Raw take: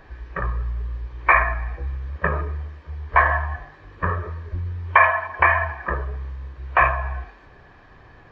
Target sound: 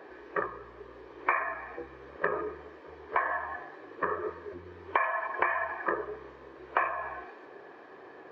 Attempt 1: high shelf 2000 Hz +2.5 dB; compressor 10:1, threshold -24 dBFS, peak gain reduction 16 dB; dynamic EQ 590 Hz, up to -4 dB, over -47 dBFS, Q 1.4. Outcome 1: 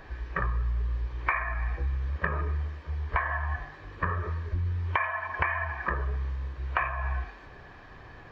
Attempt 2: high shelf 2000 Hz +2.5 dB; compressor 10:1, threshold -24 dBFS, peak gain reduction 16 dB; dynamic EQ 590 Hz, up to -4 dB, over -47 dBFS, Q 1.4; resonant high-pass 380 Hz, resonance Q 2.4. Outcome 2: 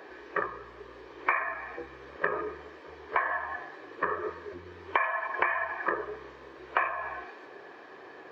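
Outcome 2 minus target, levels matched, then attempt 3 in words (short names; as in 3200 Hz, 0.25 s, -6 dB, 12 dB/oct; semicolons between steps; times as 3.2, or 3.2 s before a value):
4000 Hz band +4.5 dB
high shelf 2000 Hz -6 dB; compressor 10:1, threshold -24 dBFS, peak gain reduction 13.5 dB; dynamic EQ 590 Hz, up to -4 dB, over -47 dBFS, Q 1.4; resonant high-pass 380 Hz, resonance Q 2.4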